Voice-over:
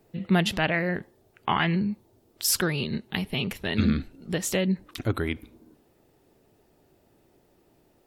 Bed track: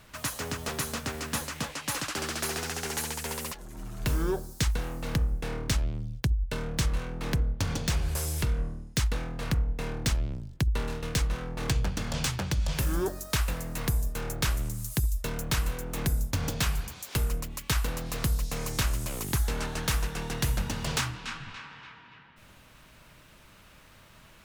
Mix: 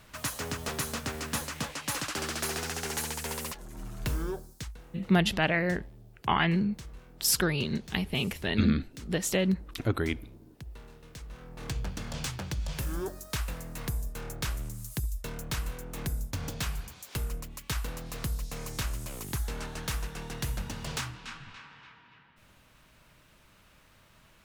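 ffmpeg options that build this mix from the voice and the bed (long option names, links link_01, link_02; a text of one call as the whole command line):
ffmpeg -i stem1.wav -i stem2.wav -filter_complex "[0:a]adelay=4800,volume=-1.5dB[link_01];[1:a]volume=11.5dB,afade=type=out:start_time=3.85:duration=0.9:silence=0.141254,afade=type=in:start_time=11.21:duration=0.69:silence=0.237137[link_02];[link_01][link_02]amix=inputs=2:normalize=0" out.wav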